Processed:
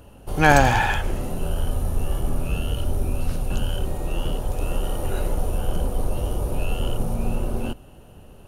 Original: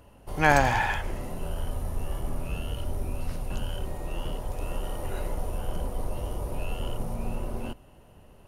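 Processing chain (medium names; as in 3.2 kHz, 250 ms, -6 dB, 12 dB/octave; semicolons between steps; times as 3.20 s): in parallel at -11 dB: hard clipper -14 dBFS, distortion -16 dB; on the sum: graphic EQ with 31 bands 630 Hz -3 dB, 1 kHz -6 dB, 2 kHz -8 dB, 5 kHz -3 dB; trim +5.5 dB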